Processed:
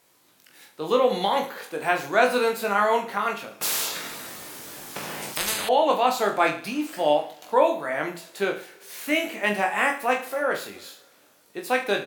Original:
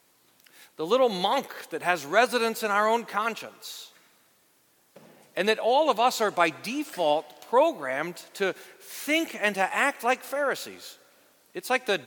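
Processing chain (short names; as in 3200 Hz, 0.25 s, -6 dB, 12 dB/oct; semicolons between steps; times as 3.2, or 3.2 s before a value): dynamic EQ 5800 Hz, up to -5 dB, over -45 dBFS, Q 0.9; reverse bouncing-ball echo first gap 20 ms, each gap 1.2×, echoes 5; 3.61–5.69 spectral compressor 10:1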